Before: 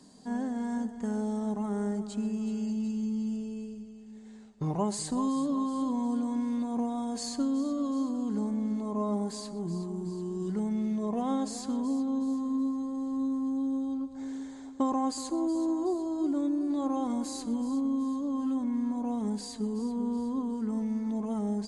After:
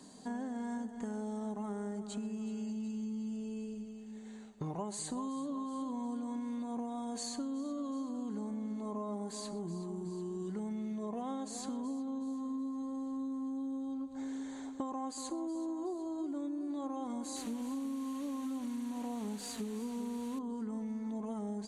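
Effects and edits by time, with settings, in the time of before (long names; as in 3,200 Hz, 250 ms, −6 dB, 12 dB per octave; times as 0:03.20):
0:17.36–0:20.39: linear delta modulator 64 kbit/s, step −41 dBFS
whole clip: low-shelf EQ 190 Hz −7 dB; notch filter 5,100 Hz, Q 5.4; downward compressor 4 to 1, threshold −41 dBFS; level +3 dB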